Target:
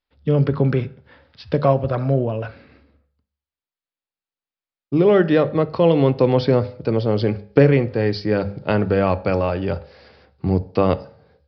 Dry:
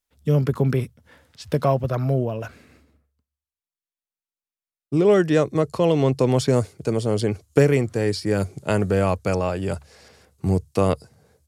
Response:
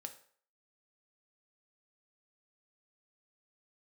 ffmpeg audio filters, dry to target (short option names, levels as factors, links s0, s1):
-filter_complex "[0:a]bandreject=f=50:t=h:w=6,bandreject=f=100:t=h:w=6,bandreject=f=150:t=h:w=6,bandreject=f=200:t=h:w=6,asplit=2[s0][s1];[1:a]atrim=start_sample=2205,highshelf=f=5200:g=-9.5[s2];[s1][s2]afir=irnorm=-1:irlink=0,volume=1.78[s3];[s0][s3]amix=inputs=2:normalize=0,aresample=11025,aresample=44100,volume=0.708"